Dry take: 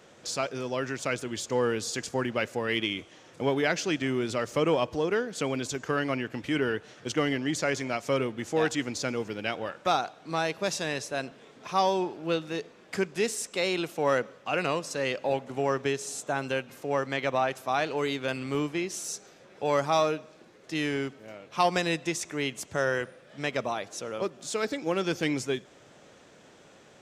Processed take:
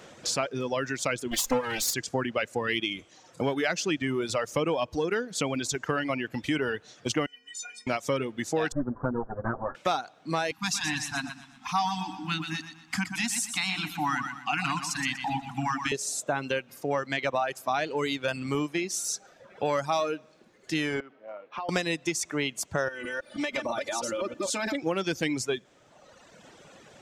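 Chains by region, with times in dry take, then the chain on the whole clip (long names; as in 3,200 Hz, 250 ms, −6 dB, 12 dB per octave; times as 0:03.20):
0:01.31–0:01.94: lower of the sound and its delayed copy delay 3.8 ms + high-shelf EQ 3,800 Hz +7 dB + transient designer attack +10 dB, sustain +5 dB
0:07.26–0:07.87: low-pass filter 9,800 Hz 24 dB per octave + spectral tilt +3.5 dB per octave + stiff-string resonator 220 Hz, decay 0.8 s, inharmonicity 0.03
0:08.72–0:09.75: lower of the sound and its delayed copy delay 7.9 ms + Butterworth low-pass 1,600 Hz 72 dB per octave + tilt shelving filter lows +3.5 dB, about 1,100 Hz
0:10.51–0:15.92: Chebyshev band-stop filter 310–730 Hz, order 5 + repeating echo 121 ms, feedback 51%, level −5 dB
0:21.00–0:21.69: band-pass filter 290–2,300 Hz + downward compressor 10 to 1, threshold −37 dBFS
0:22.88–0:24.75: delay that plays each chunk backwards 162 ms, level −2 dB + comb filter 3.4 ms, depth 86% + downward compressor 4 to 1, threshold −31 dBFS
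whole clip: reverb reduction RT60 1.5 s; parametric band 410 Hz −2.5 dB 0.4 octaves; downward compressor 3 to 1, threshold −32 dBFS; level +6.5 dB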